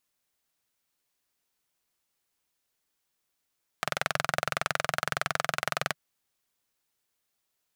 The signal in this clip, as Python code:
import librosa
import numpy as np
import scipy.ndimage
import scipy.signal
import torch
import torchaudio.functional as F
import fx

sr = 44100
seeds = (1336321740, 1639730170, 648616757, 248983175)

y = fx.engine_single(sr, seeds[0], length_s=2.12, rpm=2600, resonances_hz=(150.0, 670.0, 1300.0))